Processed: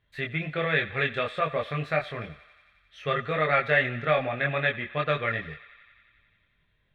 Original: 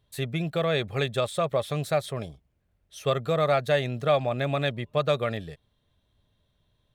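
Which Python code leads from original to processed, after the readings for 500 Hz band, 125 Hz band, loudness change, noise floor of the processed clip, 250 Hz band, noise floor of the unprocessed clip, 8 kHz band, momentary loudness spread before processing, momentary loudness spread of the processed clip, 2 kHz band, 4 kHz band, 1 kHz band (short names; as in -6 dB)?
-3.0 dB, -3.5 dB, 0.0 dB, -70 dBFS, -3.0 dB, -72 dBFS, under -15 dB, 8 LU, 12 LU, +8.5 dB, -2.5 dB, +1.0 dB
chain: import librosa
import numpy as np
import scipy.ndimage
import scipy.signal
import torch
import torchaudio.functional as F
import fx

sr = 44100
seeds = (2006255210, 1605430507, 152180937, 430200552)

p1 = fx.curve_eq(x, sr, hz=(920.0, 1900.0, 8900.0), db=(0, 14, -22))
p2 = fx.chorus_voices(p1, sr, voices=6, hz=0.58, base_ms=23, depth_ms=3.7, mix_pct=45)
y = p2 + fx.echo_thinned(p2, sr, ms=89, feedback_pct=80, hz=630.0, wet_db=-17.5, dry=0)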